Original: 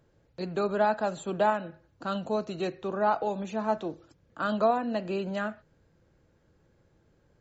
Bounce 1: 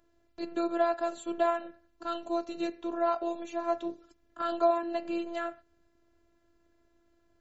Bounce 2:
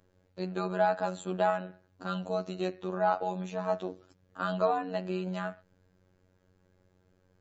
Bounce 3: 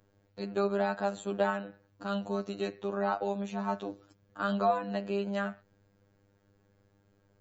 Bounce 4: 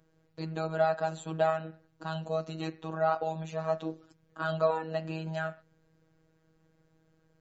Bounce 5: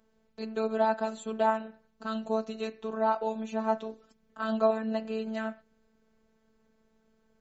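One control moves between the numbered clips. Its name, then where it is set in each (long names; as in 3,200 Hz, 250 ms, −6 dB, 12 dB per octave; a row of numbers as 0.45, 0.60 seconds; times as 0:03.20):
phases set to zero, frequency: 340, 92, 100, 160, 220 Hertz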